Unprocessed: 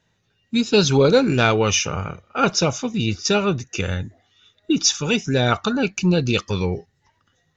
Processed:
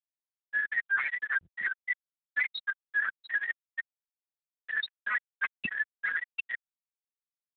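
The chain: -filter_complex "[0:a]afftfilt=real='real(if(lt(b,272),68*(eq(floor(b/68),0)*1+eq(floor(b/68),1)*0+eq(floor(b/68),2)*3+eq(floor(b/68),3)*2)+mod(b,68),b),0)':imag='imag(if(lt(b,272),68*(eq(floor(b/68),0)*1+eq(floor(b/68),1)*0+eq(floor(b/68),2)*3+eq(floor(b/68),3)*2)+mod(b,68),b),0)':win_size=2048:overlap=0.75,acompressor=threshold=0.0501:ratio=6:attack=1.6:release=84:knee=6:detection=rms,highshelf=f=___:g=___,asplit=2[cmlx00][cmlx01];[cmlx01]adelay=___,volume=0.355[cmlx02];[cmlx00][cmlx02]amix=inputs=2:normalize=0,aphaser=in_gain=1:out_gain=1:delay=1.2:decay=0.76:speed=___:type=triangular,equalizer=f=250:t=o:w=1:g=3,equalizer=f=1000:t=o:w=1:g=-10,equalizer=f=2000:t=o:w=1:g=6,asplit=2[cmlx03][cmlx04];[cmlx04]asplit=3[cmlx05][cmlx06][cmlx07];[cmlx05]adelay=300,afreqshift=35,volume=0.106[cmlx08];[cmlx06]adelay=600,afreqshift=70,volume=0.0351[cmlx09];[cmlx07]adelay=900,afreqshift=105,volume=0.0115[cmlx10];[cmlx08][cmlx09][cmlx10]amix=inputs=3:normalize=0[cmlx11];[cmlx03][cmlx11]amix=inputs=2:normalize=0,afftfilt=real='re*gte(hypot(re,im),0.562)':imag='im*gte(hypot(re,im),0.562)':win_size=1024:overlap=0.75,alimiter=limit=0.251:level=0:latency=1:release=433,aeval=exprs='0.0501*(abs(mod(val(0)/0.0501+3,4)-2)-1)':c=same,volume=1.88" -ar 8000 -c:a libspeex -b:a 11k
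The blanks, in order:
2100, 2.5, 42, 0.73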